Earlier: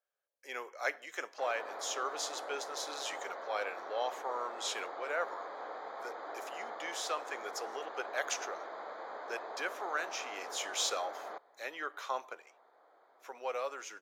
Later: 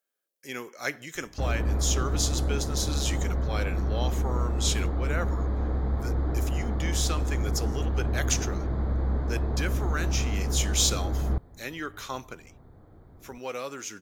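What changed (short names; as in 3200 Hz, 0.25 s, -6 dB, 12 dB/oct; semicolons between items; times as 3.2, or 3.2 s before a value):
speech: add tilt +4 dB/oct; master: remove HPF 590 Hz 24 dB/oct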